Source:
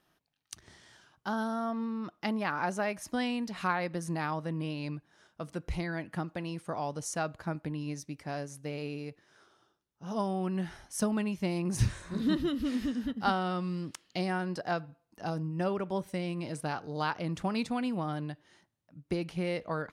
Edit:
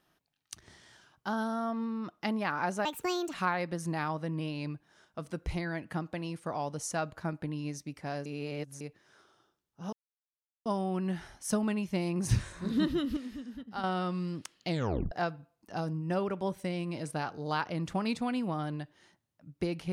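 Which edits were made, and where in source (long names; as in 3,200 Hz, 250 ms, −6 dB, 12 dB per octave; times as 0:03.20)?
0:02.85–0:03.56: play speed 146%
0:08.48–0:09.03: reverse
0:10.15: splice in silence 0.73 s
0:12.66–0:13.33: clip gain −9.5 dB
0:14.18: tape stop 0.43 s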